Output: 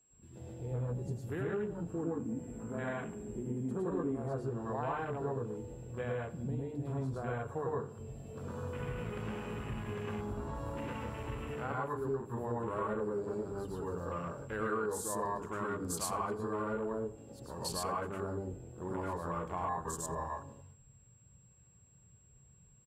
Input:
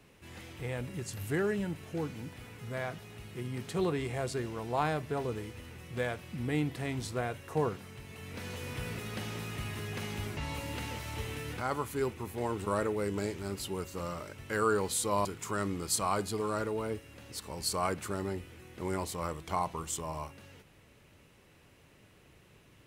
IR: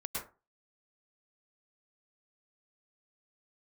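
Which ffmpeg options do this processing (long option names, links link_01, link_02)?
-filter_complex "[0:a]equalizer=frequency=2100:width=4.9:gain=-9,aeval=exprs='val(0)+0.00398*sin(2*PI*7600*n/s)':channel_layout=same,asettb=1/sr,asplit=3[link_01][link_02][link_03];[link_01]atrim=end=1.894[link_04];[link_02]atrim=start=1.89:end=4.17,asetpts=PTS-STARTPTS,afade=type=in:duration=0.004:curve=qsin,afade=type=out:start_time=2.276:duration=0.004:curve=qsin,equalizer=frequency=125:width_type=o:width=1:gain=-5,equalizer=frequency=250:width_type=o:width=1:gain=11,equalizer=frequency=2000:width_type=o:width=1:gain=6,equalizer=frequency=4000:width_type=o:width=1:gain=-7,equalizer=frequency=8000:width_type=o:width=1:gain=6[link_05];[link_03]atrim=start=4.166[link_06];[link_04][link_05]acrossfade=duration=0.004:curve1=hsin:curve2=qsin[link_07];[link_07][link_06]acrossfade=duration=0.004:curve1=qsin:curve2=hsin[link_08];[1:a]atrim=start_sample=2205,afade=type=out:start_time=0.2:duration=0.01,atrim=end_sample=9261[link_09];[link_08][link_09]afir=irnorm=-1:irlink=0,acompressor=threshold=-34dB:ratio=3,afwtdn=0.00562,bandreject=frequency=50:width_type=h:width=6,bandreject=frequency=100:width_type=h:width=6,bandreject=frequency=150:width_type=h:width=6,bandreject=frequency=200:width_type=h:width=6,bandreject=frequency=250:width_type=h:width=6,bandreject=frequency=300:width_type=h:width=6,asplit=2[link_10][link_11];[link_11]adelay=88,lowpass=frequency=3200:poles=1,volume=-17.5dB,asplit=2[link_12][link_13];[link_13]adelay=88,lowpass=frequency=3200:poles=1,volume=0.5,asplit=2[link_14][link_15];[link_15]adelay=88,lowpass=frequency=3200:poles=1,volume=0.5,asplit=2[link_16][link_17];[link_17]adelay=88,lowpass=frequency=3200:poles=1,volume=0.5[link_18];[link_10][link_12][link_14][link_16][link_18]amix=inputs=5:normalize=0"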